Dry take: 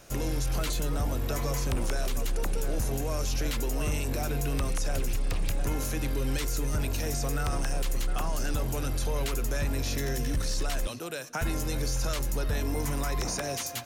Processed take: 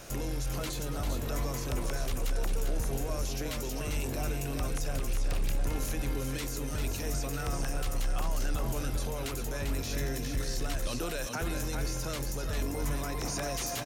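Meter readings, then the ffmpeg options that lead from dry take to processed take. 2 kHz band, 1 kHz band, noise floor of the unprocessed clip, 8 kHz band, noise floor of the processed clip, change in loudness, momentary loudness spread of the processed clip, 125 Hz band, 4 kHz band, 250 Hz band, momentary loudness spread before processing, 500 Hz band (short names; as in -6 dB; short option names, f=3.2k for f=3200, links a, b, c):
-2.5 dB, -2.5 dB, -35 dBFS, -2.5 dB, -35 dBFS, -3.0 dB, 2 LU, -3.5 dB, -2.5 dB, -2.5 dB, 2 LU, -2.5 dB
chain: -af "alimiter=level_in=8dB:limit=-24dB:level=0:latency=1:release=13,volume=-8dB,aecho=1:1:396:0.531,volume=5.5dB"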